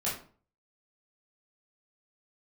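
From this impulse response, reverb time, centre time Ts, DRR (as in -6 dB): 0.45 s, 37 ms, -8.0 dB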